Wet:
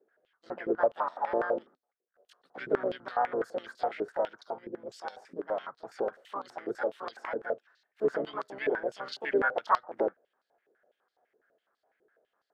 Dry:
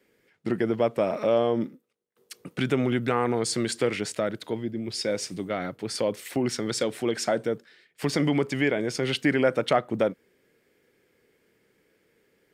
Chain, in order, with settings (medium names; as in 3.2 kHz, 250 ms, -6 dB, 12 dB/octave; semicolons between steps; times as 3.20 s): harmony voices +3 st -7 dB, +7 st -2 dB; resonant high shelf 1.9 kHz -7 dB, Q 3; step-sequenced band-pass 12 Hz 410–4300 Hz